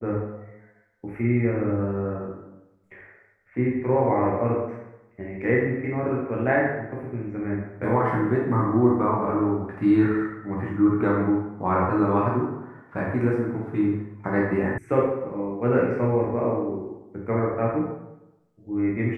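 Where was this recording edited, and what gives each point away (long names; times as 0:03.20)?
0:14.78: cut off before it has died away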